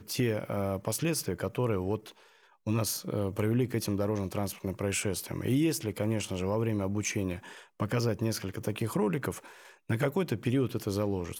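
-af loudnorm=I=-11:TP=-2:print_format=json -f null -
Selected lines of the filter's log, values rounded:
"input_i" : "-31.5",
"input_tp" : "-17.1",
"input_lra" : "1.0",
"input_thresh" : "-41.9",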